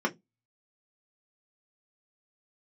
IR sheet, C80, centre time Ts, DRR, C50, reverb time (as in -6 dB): 34.0 dB, 9 ms, -0.5 dB, 23.0 dB, 0.15 s